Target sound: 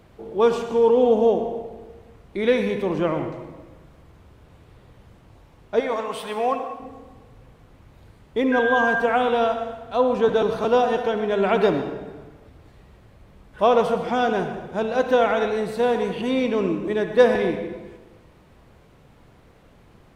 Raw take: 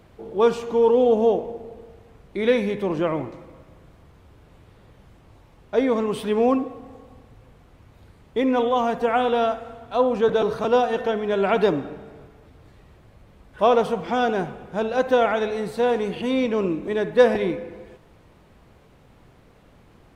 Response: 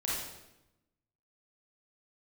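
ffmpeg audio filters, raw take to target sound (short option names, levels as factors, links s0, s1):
-filter_complex "[0:a]asettb=1/sr,asplit=3[s0][s1][s2];[s0]atrim=end=5.804[s3];[s1]atrim=start=5.8:end=6.8,asetpts=PTS-STARTPTS,afade=t=in:d=0.004:c=qsin,afade=t=out:st=0.996:d=0.004:c=qsin,lowshelf=f=490:t=q:w=1.5:g=-11[s4];[s2]atrim=start=6.796[s5];[s3][s4]acrossfade=d=0.004:c1=hsin:c2=qsin[s6];[s6][s5]acrossfade=d=0.004:c1=qsin:c2=hsin,asettb=1/sr,asplit=3[s7][s8][s9];[s7]atrim=end=8.524[s10];[s8]atrim=start=8.52:end=9,asetpts=PTS-STARTPTS,afade=t=in:d=0.004:c=qsin,afade=t=out:st=0.476:d=0.004:c=qsin,aeval=exprs='val(0)+0.0708*sin(2*PI*1600*n/s)':c=same[s11];[s9]atrim=start=8.996[s12];[s10][s11]acrossfade=d=0.004:c1=hsin:c2=qsin[s13];[s13][s12]acrossfade=d=0.004:c1=qsin:c2=hsin,asplit=2[s14][s15];[1:a]atrim=start_sample=2205,adelay=71[s16];[s15][s16]afir=irnorm=-1:irlink=0,volume=0.211[s17];[s14][s17]amix=inputs=2:normalize=0"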